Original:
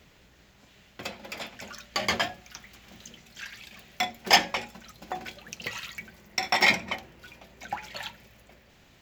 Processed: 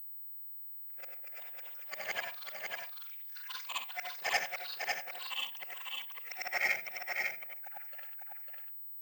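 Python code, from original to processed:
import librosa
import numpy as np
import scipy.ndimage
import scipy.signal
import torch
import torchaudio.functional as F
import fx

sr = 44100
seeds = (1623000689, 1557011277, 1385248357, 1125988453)

y = fx.frame_reverse(x, sr, frame_ms=200.0)
y = fx.highpass(y, sr, hz=650.0, slope=6)
y = fx.fixed_phaser(y, sr, hz=1000.0, stages=6)
y = 10.0 ** (-20.0 / 20.0) * np.tanh(y / 10.0 ** (-20.0 / 20.0))
y = fx.power_curve(y, sr, exponent=1.4)
y = fx.echo_pitch(y, sr, ms=688, semitones=6, count=3, db_per_echo=-6.0)
y = y + 10.0 ** (-4.0 / 20.0) * np.pad(y, (int(550 * sr / 1000.0), 0))[:len(y)]
y = fx.pwm(y, sr, carrier_hz=16000.0)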